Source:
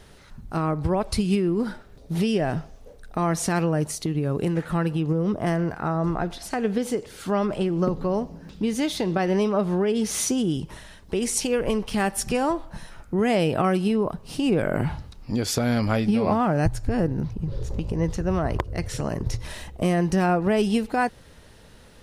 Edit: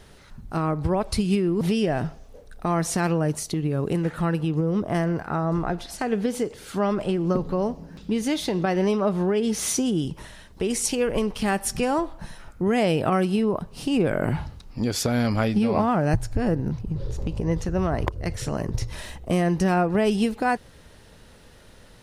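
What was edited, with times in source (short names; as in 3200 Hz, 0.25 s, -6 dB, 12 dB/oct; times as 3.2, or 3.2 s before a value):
1.61–2.13 cut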